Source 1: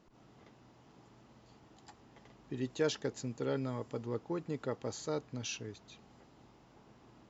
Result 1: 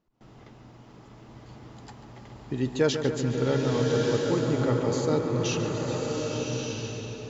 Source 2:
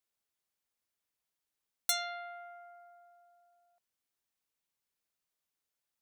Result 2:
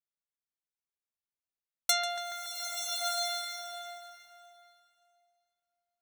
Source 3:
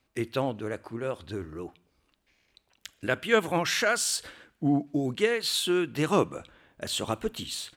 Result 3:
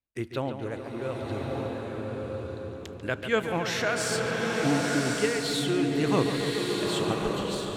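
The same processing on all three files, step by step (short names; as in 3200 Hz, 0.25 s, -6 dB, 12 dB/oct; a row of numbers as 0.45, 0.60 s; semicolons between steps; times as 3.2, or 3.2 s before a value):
low shelf 97 Hz +8 dB; darkening echo 0.142 s, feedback 81%, low-pass 4400 Hz, level -9.5 dB; gate with hold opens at -50 dBFS; bell 14000 Hz -5 dB 1 oct; bloom reverb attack 1.22 s, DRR 0 dB; normalise peaks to -12 dBFS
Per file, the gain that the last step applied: +8.0, +5.5, -3.5 dB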